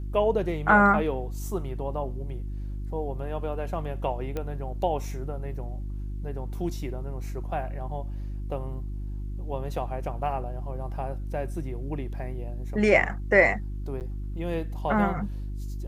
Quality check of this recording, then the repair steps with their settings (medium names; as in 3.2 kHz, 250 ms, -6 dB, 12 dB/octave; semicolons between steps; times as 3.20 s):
hum 50 Hz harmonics 7 -33 dBFS
4.37 s: pop -19 dBFS
14.00–14.01 s: dropout 8.8 ms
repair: de-click; de-hum 50 Hz, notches 7; interpolate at 14.00 s, 8.8 ms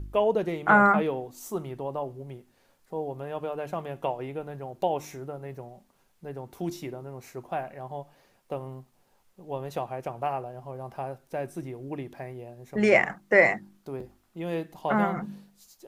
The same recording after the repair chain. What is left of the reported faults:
nothing left